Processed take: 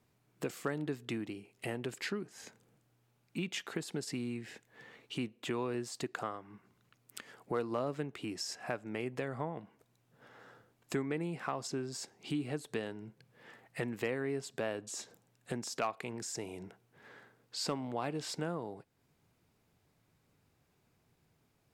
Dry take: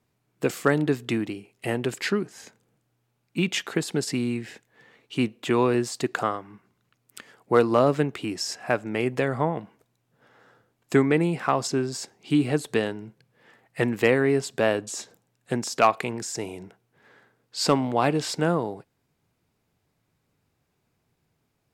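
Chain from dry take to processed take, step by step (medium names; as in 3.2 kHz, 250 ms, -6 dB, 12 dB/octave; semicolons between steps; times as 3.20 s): compression 2:1, threshold -45 dBFS, peak gain reduction 17 dB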